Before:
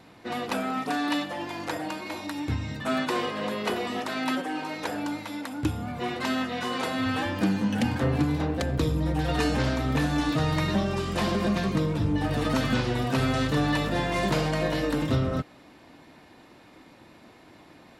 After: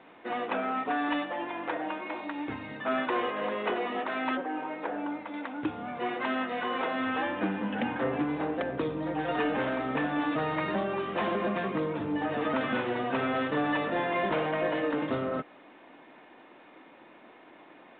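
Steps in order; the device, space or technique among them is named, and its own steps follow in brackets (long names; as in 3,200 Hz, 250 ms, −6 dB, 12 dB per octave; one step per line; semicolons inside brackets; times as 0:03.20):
0:04.37–0:05.34: low-pass filter 1,300 Hz 6 dB per octave
dynamic equaliser 3,700 Hz, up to −4 dB, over −48 dBFS, Q 1.5
telephone (band-pass filter 320–3,100 Hz; soft clipping −19.5 dBFS, distortion −23 dB; level +1 dB; mu-law 64 kbit/s 8,000 Hz)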